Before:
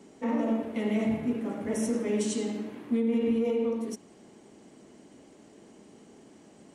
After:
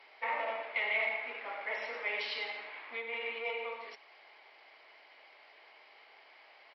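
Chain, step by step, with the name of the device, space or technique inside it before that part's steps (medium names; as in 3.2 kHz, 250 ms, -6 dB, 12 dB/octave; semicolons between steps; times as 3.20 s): musical greeting card (resampled via 11.025 kHz; high-pass 730 Hz 24 dB/octave; peaking EQ 2.2 kHz +11 dB 0.41 oct); trim +3 dB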